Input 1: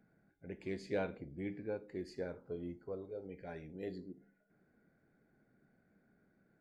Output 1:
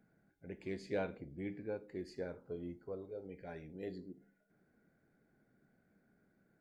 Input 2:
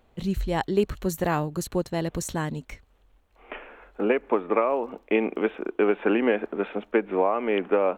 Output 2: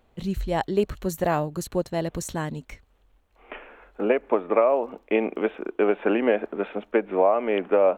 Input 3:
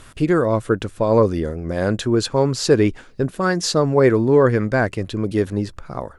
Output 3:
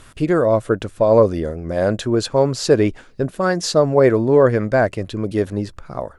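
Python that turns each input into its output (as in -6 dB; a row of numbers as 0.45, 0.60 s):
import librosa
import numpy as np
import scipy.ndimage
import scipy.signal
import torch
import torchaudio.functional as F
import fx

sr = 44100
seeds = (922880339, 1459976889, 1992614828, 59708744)

y = fx.dynamic_eq(x, sr, hz=620.0, q=2.7, threshold_db=-35.0, ratio=4.0, max_db=8)
y = F.gain(torch.from_numpy(y), -1.0).numpy()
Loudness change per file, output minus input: -1.0, +1.0, +1.0 LU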